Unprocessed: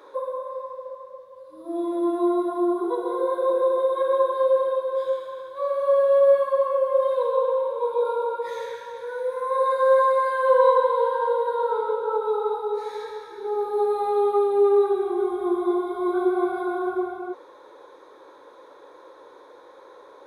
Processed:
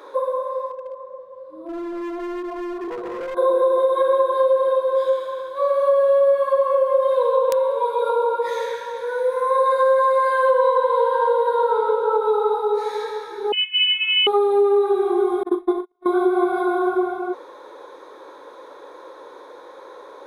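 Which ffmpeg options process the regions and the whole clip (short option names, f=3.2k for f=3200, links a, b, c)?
-filter_complex "[0:a]asettb=1/sr,asplit=3[a][b][c];[a]atrim=end=0.714[d];[b]atrim=start=0.71:end=3.37,asetpts=PTS-STARTPTS,afade=t=in:d=0.004:c=qsin,afade=t=out:st=2.656:d=0.004:c=qsin,lowpass=f=1k:p=1,acompressor=threshold=-39dB:ratio=1.5:attack=3.2:release=140:knee=1:detection=peak,asoftclip=type=hard:threshold=-33dB[e];[c]atrim=start=3.366[f];[d][e]acrossfade=d=0.004:c1=hsin:c2=qsin[g];[g][f]acrossfade=d=0.004:c1=qsin:c2=hsin,asettb=1/sr,asplit=3[h][i][j];[h]atrim=end=7.494[k];[i]atrim=start=7.49:end=8.1,asetpts=PTS-STARTPTS,afade=t=in:d=0.004:c=qsin,afade=t=out:st=0.606:d=0.004:c=qsin,equalizer=f=190:w=0.33:g=-4.5,aecho=1:1:7.1:0.85,atrim=end_sample=26901,aeval=exprs='(mod(6.68*val(0)+1,2)-1)/6.68':c=same[l];[j]atrim=start=8.096[m];[k][l]acrossfade=d=0.004:c1=hsin:c2=qsin[n];[n][m]acrossfade=d=0.004:c1=qsin:c2=hsin,asettb=1/sr,asplit=3[o][p][q];[o]atrim=end=13.524[r];[p]atrim=start=13.52:end=14.27,asetpts=PTS-STARTPTS,afade=t=in:d=0.004:c=qsin,afade=t=out:st=0.746:d=0.004:c=qsin,agate=range=-33dB:threshold=-22dB:ratio=3:release=100:detection=peak,asubboost=boost=11:cutoff=180,lowpass=f=2.9k:t=q:w=0.5098,lowpass=f=2.9k:t=q:w=0.6013,lowpass=f=2.9k:t=q:w=0.9,lowpass=f=2.9k:t=q:w=2.563,afreqshift=-3400[s];[q]atrim=start=14.266[t];[r][s]acrossfade=d=0.004:c1=hsin:c2=qsin[u];[u][t]acrossfade=d=0.004:c1=qsin:c2=hsin,asettb=1/sr,asplit=3[v][w][x];[v]atrim=end=15.434[y];[w]atrim=start=15.43:end=16.06,asetpts=PTS-STARTPTS,afade=t=in:d=0.004:c=qsin,afade=t=out:st=0.626:d=0.004:c=qsin,agate=range=-50dB:threshold=-22dB:ratio=16:release=100:detection=peak,asplit=2[z][aa];[aa]adelay=39,volume=-9dB[ab];[z][ab]amix=inputs=2:normalize=0,atrim=end_sample=27783[ac];[x]atrim=start=16.056[ad];[y][ac]acrossfade=d=0.004:c1=hsin:c2=qsin[ae];[ae][ad]acrossfade=d=0.004:c1=qsin:c2=hsin,equalizer=f=86:t=o:w=1.9:g=-6.5,acompressor=threshold=-21dB:ratio=5,volume=7dB"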